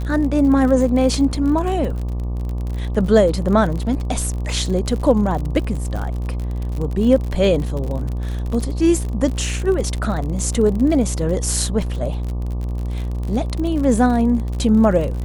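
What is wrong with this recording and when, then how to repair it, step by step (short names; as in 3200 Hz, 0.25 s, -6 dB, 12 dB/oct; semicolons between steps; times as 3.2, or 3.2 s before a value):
buzz 60 Hz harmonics 20 -23 dBFS
crackle 47/s -25 dBFS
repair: de-click; de-hum 60 Hz, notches 20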